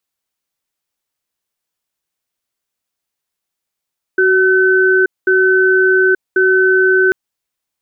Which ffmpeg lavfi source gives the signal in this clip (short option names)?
-f lavfi -i "aevalsrc='0.282*(sin(2*PI*375*t)+sin(2*PI*1520*t))*clip(min(mod(t,1.09),0.88-mod(t,1.09))/0.005,0,1)':d=2.94:s=44100"